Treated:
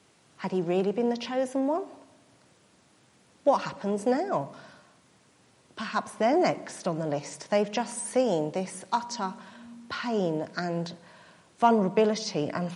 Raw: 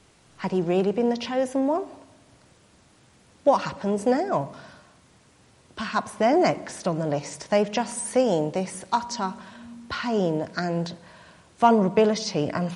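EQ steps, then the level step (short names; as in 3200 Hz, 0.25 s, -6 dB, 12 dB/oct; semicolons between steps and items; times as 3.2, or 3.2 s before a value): HPF 130 Hz 12 dB/oct; -3.5 dB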